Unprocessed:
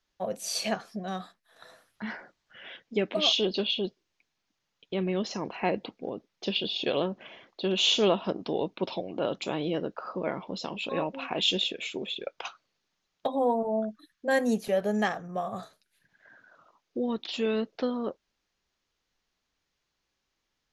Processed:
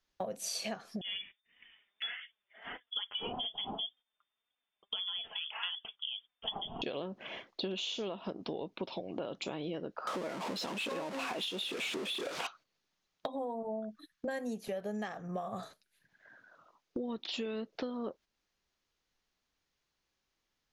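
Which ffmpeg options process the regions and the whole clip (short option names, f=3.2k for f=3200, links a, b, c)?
-filter_complex "[0:a]asettb=1/sr,asplit=3[a][b][c];[a]atrim=end=1.014[d];[b]atrim=start=1.01:end=6.82,asetpts=PTS-STARTPTS,afade=t=in:d=0.004:c=qsin,afade=t=out:st=5.806:d=0.004:c=qsin,lowpass=f=3.1k:t=q:w=0.5098,lowpass=f=3.1k:t=q:w=0.6013,lowpass=f=3.1k:t=q:w=0.9,lowpass=f=3.1k:t=q:w=2.563,afreqshift=-3600,flanger=delay=3.9:depth=1.2:regen=42:speed=1.7:shape=triangular[e];[c]atrim=start=6.816[f];[d][e]acrossfade=d=0.004:c1=hsin:c2=qsin[g];[g][f]acrossfade=d=0.004:c1=qsin:c2=hsin,asettb=1/sr,asplit=3[h][i][j];[h]atrim=end=10.074[k];[i]atrim=start=10.07:end=12.47,asetpts=PTS-STARTPTS,afade=t=in:d=0.004:c=qsin,afade=t=out:st=2.396:d=0.004:c=qsin,aeval=exprs='val(0)+0.5*0.0473*sgn(val(0))':c=same,highpass=200,adynamicsmooth=sensitivity=2:basefreq=7.6k[l];[j]atrim=start=12.466[m];[k][l]acrossfade=d=0.004:c1=hsin:c2=qsin[n];[n][m]acrossfade=d=0.004:c1=qsin:c2=hsin,agate=range=-10dB:threshold=-50dB:ratio=16:detection=peak,alimiter=limit=-18.5dB:level=0:latency=1:release=201,acompressor=threshold=-43dB:ratio=8,volume=7dB"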